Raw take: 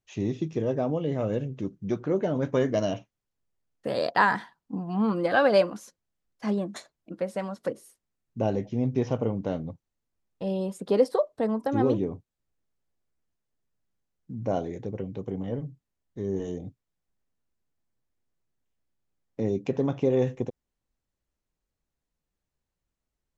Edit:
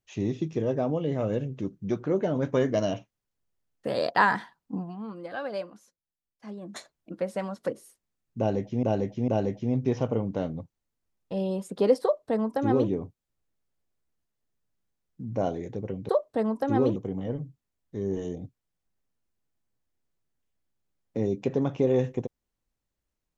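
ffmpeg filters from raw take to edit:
-filter_complex "[0:a]asplit=7[a][b][c][d][e][f][g];[a]atrim=end=4.96,asetpts=PTS-STARTPTS,afade=t=out:st=4.81:d=0.15:silence=0.223872[h];[b]atrim=start=4.96:end=6.61,asetpts=PTS-STARTPTS,volume=-13dB[i];[c]atrim=start=6.61:end=8.832,asetpts=PTS-STARTPTS,afade=t=in:d=0.15:silence=0.223872[j];[d]atrim=start=8.378:end=8.832[k];[e]atrim=start=8.378:end=15.192[l];[f]atrim=start=11.128:end=12.002[m];[g]atrim=start=15.188[n];[h][i][j]concat=n=3:v=0:a=1[o];[o][k]acrossfade=d=0.004:c1=hsin:c2=hsin[p];[p][l]acrossfade=d=0.004:c1=hsin:c2=hsin[q];[q][m]acrossfade=d=0.004:c1=hsin:c2=hsin[r];[r][n]acrossfade=d=0.004:c1=hsin:c2=hsin"

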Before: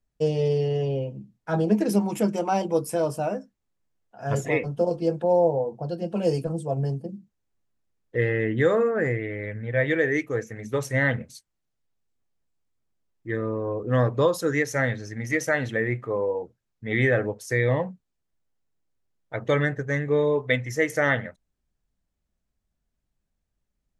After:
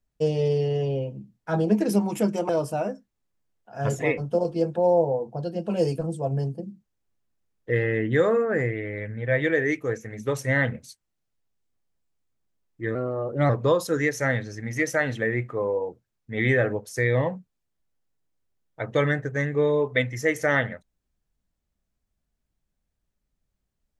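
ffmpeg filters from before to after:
-filter_complex "[0:a]asplit=4[a][b][c][d];[a]atrim=end=2.492[e];[b]atrim=start=2.948:end=13.414[f];[c]atrim=start=13.41:end=14.03,asetpts=PTS-STARTPTS,asetrate=50274,aresample=44100,atrim=end_sample=23984,asetpts=PTS-STARTPTS[g];[d]atrim=start=14.026[h];[e][f]acrossfade=d=0.004:c1=hsin:c2=hsin[i];[i][g]acrossfade=d=0.004:c1=hsin:c2=hsin[j];[j][h]acrossfade=d=0.004:c1=hsin:c2=hsin"

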